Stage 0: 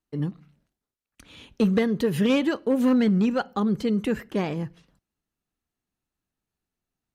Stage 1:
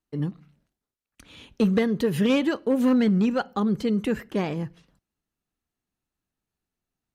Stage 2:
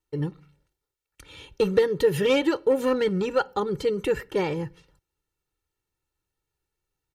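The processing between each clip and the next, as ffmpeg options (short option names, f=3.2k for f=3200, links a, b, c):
-af anull
-af "aecho=1:1:2.2:0.87"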